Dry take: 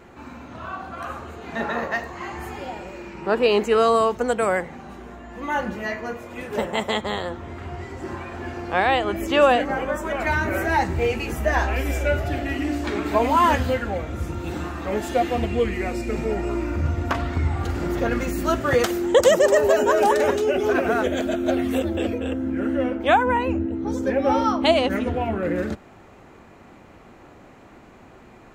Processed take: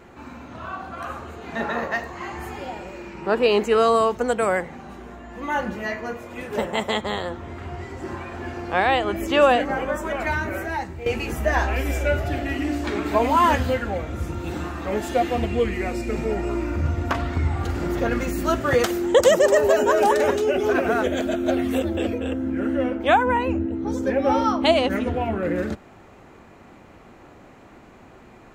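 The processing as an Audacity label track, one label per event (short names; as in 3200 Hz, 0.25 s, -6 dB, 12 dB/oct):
10.050000	11.060000	fade out, to -13.5 dB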